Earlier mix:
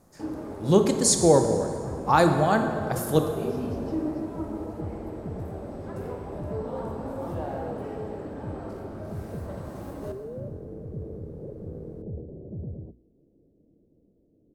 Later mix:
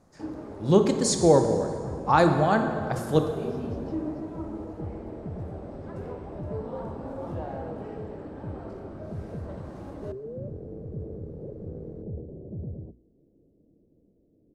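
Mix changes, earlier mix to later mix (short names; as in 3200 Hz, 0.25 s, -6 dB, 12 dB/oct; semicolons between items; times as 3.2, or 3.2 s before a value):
first sound: send -11.0 dB; master: add air absorption 65 m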